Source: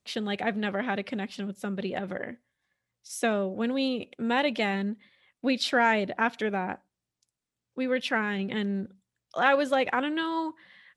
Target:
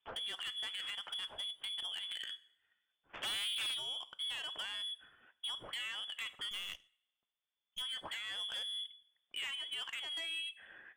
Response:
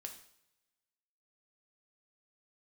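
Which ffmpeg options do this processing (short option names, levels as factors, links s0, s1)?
-filter_complex "[0:a]acompressor=threshold=0.0178:ratio=10,asplit=3[s0][s1][s2];[s0]afade=t=out:st=3.13:d=0.02[s3];[s1]aeval=exprs='0.0422*sin(PI/2*3.55*val(0)/0.0422)':c=same,afade=t=in:st=3.13:d=0.02,afade=t=out:st=3.73:d=0.02[s4];[s2]afade=t=in:st=3.73:d=0.02[s5];[s3][s4][s5]amix=inputs=3:normalize=0,lowpass=f=3100:t=q:w=0.5098,lowpass=f=3100:t=q:w=0.6013,lowpass=f=3100:t=q:w=0.9,lowpass=f=3100:t=q:w=2.563,afreqshift=-3600,asoftclip=type=tanh:threshold=0.0178,asplit=2[s6][s7];[1:a]atrim=start_sample=2205,highshelf=f=7100:g=6[s8];[s7][s8]afir=irnorm=-1:irlink=0,volume=0.631[s9];[s6][s9]amix=inputs=2:normalize=0,asettb=1/sr,asplit=3[s10][s11][s12];[s10]atrim=end=6.514[s13];[s11]atrim=start=6.51:end=7.82,asetpts=PTS-STARTPTS,afade=t=in:d=0.004:c=qsin,afade=t=out:st=1.306:d=0.004:c=qsin,aeval=exprs='0.0251*(cos(1*acos(clip(val(0)/0.0251,-1,1)))-cos(1*PI/2))+0.00126*(cos(7*acos(clip(val(0)/0.0251,-1,1)))-cos(7*PI/2))+0.00224*(cos(8*acos(clip(val(0)/0.0251,-1,1)))-cos(8*PI/2))':c=same[s14];[s12]atrim=start=7.816[s15];[s13][s14]acrossfade=d=0.004:c1=hsin:c2=qsin[s16];[s16][s15]acrossfade=d=0.004:c1=qsin:c2=hsin,volume=0.708"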